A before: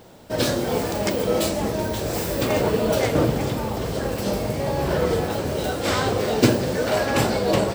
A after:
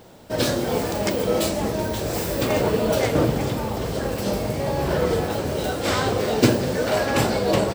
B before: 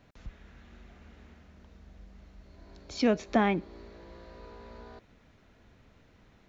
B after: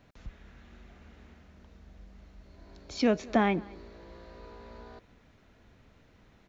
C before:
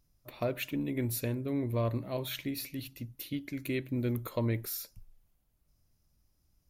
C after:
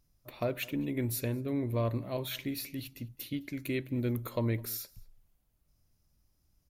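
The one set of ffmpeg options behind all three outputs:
ffmpeg -i in.wav -filter_complex "[0:a]asplit=2[link_01][link_02];[link_02]adelay=209.9,volume=-23dB,highshelf=frequency=4000:gain=-4.72[link_03];[link_01][link_03]amix=inputs=2:normalize=0" out.wav

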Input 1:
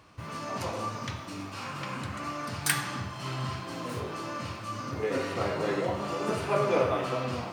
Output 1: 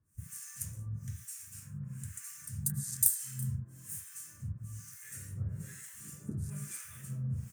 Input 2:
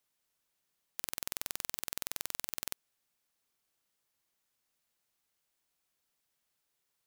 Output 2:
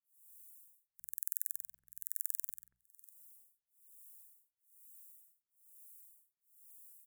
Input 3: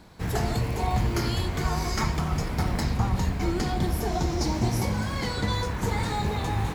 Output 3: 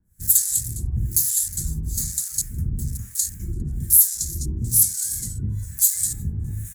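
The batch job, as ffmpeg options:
ffmpeg -i in.wav -filter_complex "[0:a]equalizer=frequency=1700:width_type=o:width=0.49:gain=10.5,bandreject=frequency=60:width_type=h:width=6,bandreject=frequency=120:width_type=h:width=6,bandreject=frequency=180:width_type=h:width=6,aeval=exprs='0.531*(cos(1*acos(clip(val(0)/0.531,-1,1)))-cos(1*PI/2))+0.0531*(cos(3*acos(clip(val(0)/0.531,-1,1)))-cos(3*PI/2))+0.15*(cos(5*acos(clip(val(0)/0.531,-1,1)))-cos(5*PI/2))+0.00335*(cos(7*acos(clip(val(0)/0.531,-1,1)))-cos(7*PI/2))':channel_layout=same,acrossover=split=710|6600[link_01][link_02][link_03];[link_03]acompressor=mode=upward:threshold=-57dB:ratio=2.5[link_04];[link_01][link_02][link_04]amix=inputs=3:normalize=0,firequalizer=gain_entry='entry(120,0);entry(270,-12);entry(730,-25);entry(1600,-9);entry(7700,2)':delay=0.05:min_phase=1,aexciter=amount=14.1:drive=5.7:freq=6500,afwtdn=0.0708,asplit=2[link_05][link_06];[link_06]aecho=0:1:364|728:0.0944|0.017[link_07];[link_05][link_07]amix=inputs=2:normalize=0,acrossover=split=1000[link_08][link_09];[link_08]aeval=exprs='val(0)*(1-1/2+1/2*cos(2*PI*1.1*n/s))':channel_layout=same[link_10];[link_09]aeval=exprs='val(0)*(1-1/2-1/2*cos(2*PI*1.1*n/s))':channel_layout=same[link_11];[link_10][link_11]amix=inputs=2:normalize=0,alimiter=level_in=-0.5dB:limit=-1dB:release=50:level=0:latency=1,volume=-1dB" out.wav

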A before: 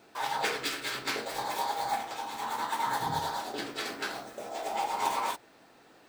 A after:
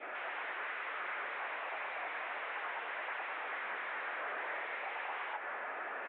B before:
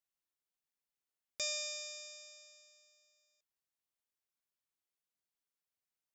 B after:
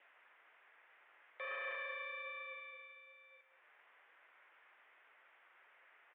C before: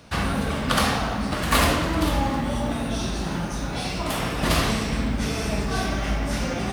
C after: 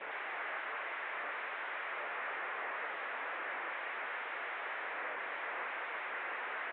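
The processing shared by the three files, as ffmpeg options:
ffmpeg -i in.wav -filter_complex "[0:a]adynamicequalizer=threshold=0.01:dfrequency=1300:dqfactor=1.1:tfrequency=1300:tqfactor=1.1:attack=5:release=100:ratio=0.375:range=2:mode=boostabove:tftype=bell,acompressor=threshold=-34dB:ratio=6,alimiter=level_in=8.5dB:limit=-24dB:level=0:latency=1:release=245,volume=-8.5dB,aresample=8000,aeval=exprs='0.0251*sin(PI/2*5.62*val(0)/0.0251)':channel_layout=same,aresample=44100,crystalizer=i=9:c=0,acompressor=mode=upward:threshold=-45dB:ratio=2.5,aeval=exprs='(tanh(44.7*val(0)+0.5)-tanh(0.5))/44.7':channel_layout=same,crystalizer=i=2.5:c=0,flanger=delay=4.9:depth=3.1:regen=81:speed=1.2:shape=triangular,asplit=2[link_01][link_02];[link_02]adelay=192.4,volume=-11dB,highshelf=frequency=4000:gain=-4.33[link_03];[link_01][link_03]amix=inputs=2:normalize=0,highpass=frequency=510:width_type=q:width=0.5412,highpass=frequency=510:width_type=q:width=1.307,lowpass=frequency=2100:width_type=q:width=0.5176,lowpass=frequency=2100:width_type=q:width=0.7071,lowpass=frequency=2100:width_type=q:width=1.932,afreqshift=-71,volume=2dB" out.wav

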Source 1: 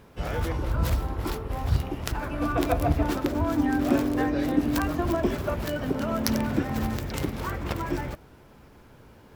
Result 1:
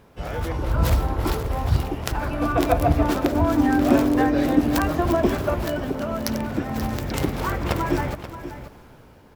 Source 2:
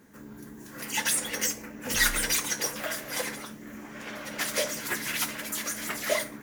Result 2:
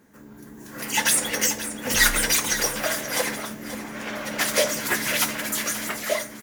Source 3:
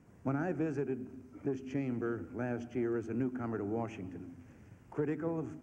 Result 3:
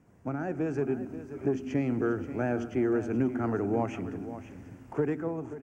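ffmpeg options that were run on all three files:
ffmpeg -i in.wav -filter_complex "[0:a]equalizer=frequency=700:width=1.5:gain=2.5,dynaudnorm=framelen=150:gausssize=9:maxgain=7.5dB,asplit=2[link_01][link_02];[link_02]aecho=0:1:532:0.237[link_03];[link_01][link_03]amix=inputs=2:normalize=0,volume=-1dB" out.wav

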